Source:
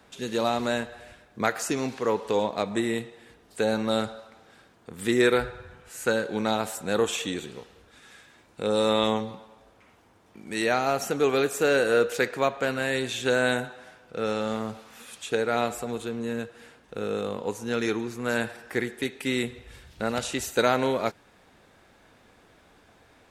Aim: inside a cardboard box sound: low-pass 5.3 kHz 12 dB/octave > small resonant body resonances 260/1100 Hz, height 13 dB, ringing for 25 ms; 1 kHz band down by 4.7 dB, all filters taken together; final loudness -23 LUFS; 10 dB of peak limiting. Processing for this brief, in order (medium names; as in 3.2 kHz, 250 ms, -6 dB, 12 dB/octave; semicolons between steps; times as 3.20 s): peaking EQ 1 kHz -7 dB; peak limiter -20 dBFS; low-pass 5.3 kHz 12 dB/octave; small resonant body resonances 260/1100 Hz, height 13 dB, ringing for 25 ms; trim +2.5 dB